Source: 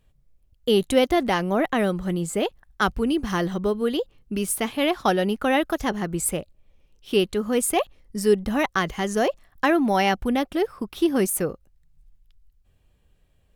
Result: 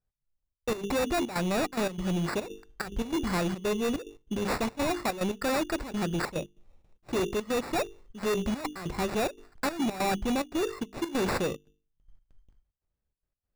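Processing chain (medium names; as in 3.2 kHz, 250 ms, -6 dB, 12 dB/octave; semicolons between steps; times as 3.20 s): gate with hold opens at -47 dBFS; hum notches 50/100/150/200/250/300/350/400/450 Hz; sample-and-hold 14×; peaking EQ 15 kHz -11 dB 0.53 oct; hard clipper -25 dBFS, distortion -6 dB; trance gate "x.xxx.x.xxx" 144 bpm -12 dB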